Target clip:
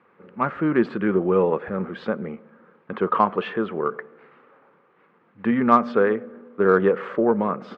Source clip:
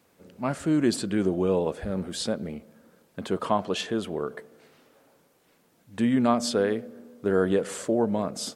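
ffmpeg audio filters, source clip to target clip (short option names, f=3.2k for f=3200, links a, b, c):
-af "atempo=1.1,highpass=200,equalizer=f=280:t=q:w=4:g=-8,equalizer=f=650:t=q:w=4:g=-9,equalizer=f=1.2k:t=q:w=4:g=7,lowpass=f=2.2k:w=0.5412,lowpass=f=2.2k:w=1.3066,aeval=exprs='0.335*(cos(1*acos(clip(val(0)/0.335,-1,1)))-cos(1*PI/2))+0.00422*(cos(7*acos(clip(val(0)/0.335,-1,1)))-cos(7*PI/2))':c=same,volume=8dB"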